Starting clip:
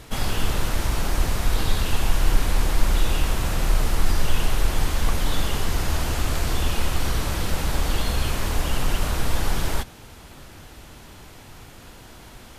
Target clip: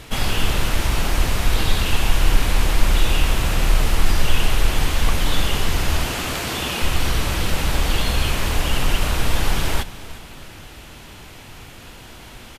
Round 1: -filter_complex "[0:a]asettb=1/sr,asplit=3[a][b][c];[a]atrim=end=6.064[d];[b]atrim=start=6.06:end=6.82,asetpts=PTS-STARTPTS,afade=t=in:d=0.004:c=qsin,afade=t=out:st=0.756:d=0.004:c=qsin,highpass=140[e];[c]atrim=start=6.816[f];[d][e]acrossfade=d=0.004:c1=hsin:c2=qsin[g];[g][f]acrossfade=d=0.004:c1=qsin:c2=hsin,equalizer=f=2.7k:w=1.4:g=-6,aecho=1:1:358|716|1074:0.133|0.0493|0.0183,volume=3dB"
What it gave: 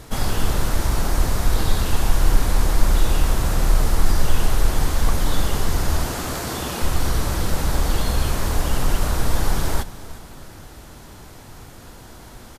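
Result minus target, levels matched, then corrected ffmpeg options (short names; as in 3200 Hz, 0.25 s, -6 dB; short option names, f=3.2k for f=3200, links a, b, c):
2000 Hz band -4.5 dB
-filter_complex "[0:a]asettb=1/sr,asplit=3[a][b][c];[a]atrim=end=6.064[d];[b]atrim=start=6.06:end=6.82,asetpts=PTS-STARTPTS,afade=t=in:d=0.004:c=qsin,afade=t=out:st=0.756:d=0.004:c=qsin,highpass=140[e];[c]atrim=start=6.816[f];[d][e]acrossfade=d=0.004:c1=hsin:c2=qsin[g];[g][f]acrossfade=d=0.004:c1=qsin:c2=hsin,equalizer=f=2.7k:w=1.4:g=5,aecho=1:1:358|716|1074:0.133|0.0493|0.0183,volume=3dB"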